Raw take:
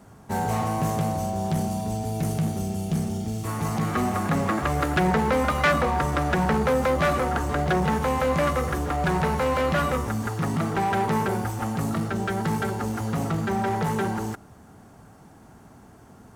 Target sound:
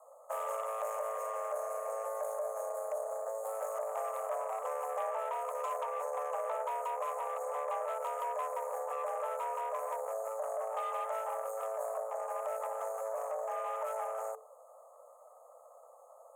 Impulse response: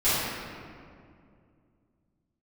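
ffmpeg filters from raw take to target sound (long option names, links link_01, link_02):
-af "afftfilt=real='re*(1-between(b*sr/4096,890,6000))':imag='im*(1-between(b*sr/4096,890,6000))':win_size=4096:overlap=0.75,acompressor=threshold=-28dB:ratio=3,aeval=exprs='0.119*(cos(1*acos(clip(val(0)/0.119,-1,1)))-cos(1*PI/2))+0.00376*(cos(3*acos(clip(val(0)/0.119,-1,1)))-cos(3*PI/2))+0.015*(cos(4*acos(clip(val(0)/0.119,-1,1)))-cos(4*PI/2))+0.0168*(cos(6*acos(clip(val(0)/0.119,-1,1)))-cos(6*PI/2))':channel_layout=same,afreqshift=440,volume=-6.5dB"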